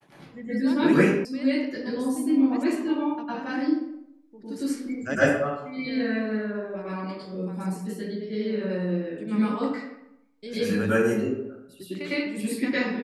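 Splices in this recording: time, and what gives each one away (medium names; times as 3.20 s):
1.25 s: sound stops dead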